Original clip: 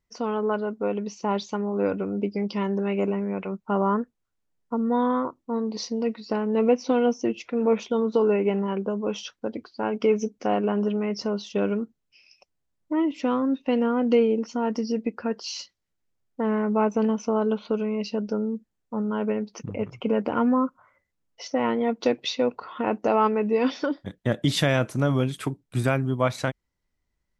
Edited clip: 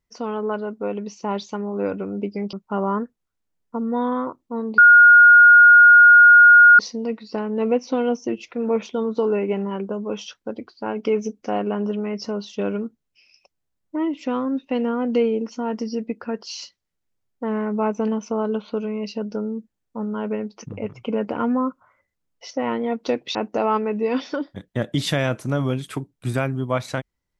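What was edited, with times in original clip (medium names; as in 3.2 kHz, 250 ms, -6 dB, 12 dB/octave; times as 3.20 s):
2.53–3.51 s: delete
5.76 s: add tone 1.43 kHz -6 dBFS 2.01 s
22.32–22.85 s: delete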